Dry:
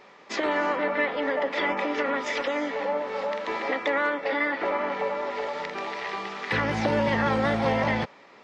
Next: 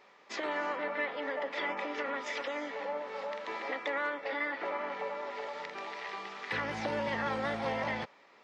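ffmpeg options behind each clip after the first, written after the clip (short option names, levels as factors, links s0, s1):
-af "lowshelf=f=330:g=-7.5,volume=0.422"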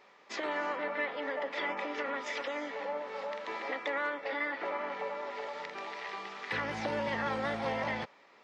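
-af anull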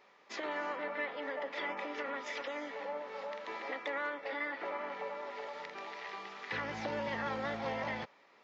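-af "aresample=16000,aresample=44100,volume=0.668"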